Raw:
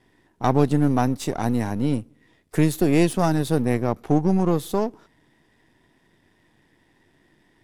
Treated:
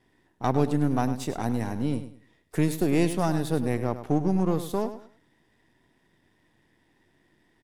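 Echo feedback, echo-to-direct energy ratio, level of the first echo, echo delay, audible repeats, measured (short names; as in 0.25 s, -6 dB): 26%, -11.0 dB, -11.5 dB, 0.101 s, 3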